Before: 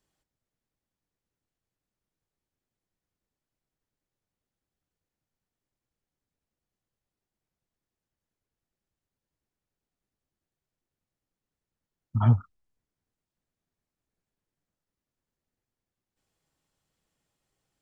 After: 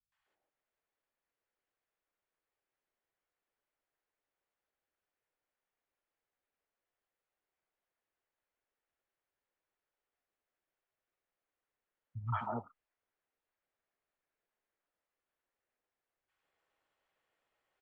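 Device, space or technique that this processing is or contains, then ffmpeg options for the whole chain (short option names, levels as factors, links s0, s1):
DJ mixer with the lows and highs turned down: -filter_complex "[0:a]acrossover=split=460 2800:gain=0.1 1 0.0891[s0][s1][s2];[s0][s1][s2]amix=inputs=3:normalize=0,alimiter=level_in=1.33:limit=0.0631:level=0:latency=1:release=111,volume=0.75,acrossover=split=160|900[s3][s4][s5];[s5]adelay=120[s6];[s4]adelay=260[s7];[s3][s7][s6]amix=inputs=3:normalize=0,volume=1.78"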